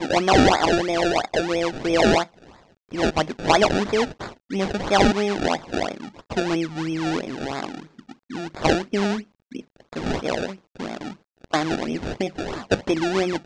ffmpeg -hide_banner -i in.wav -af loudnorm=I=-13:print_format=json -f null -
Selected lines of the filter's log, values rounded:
"input_i" : "-23.1",
"input_tp" : "-2.5",
"input_lra" : "5.6",
"input_thresh" : "-33.9",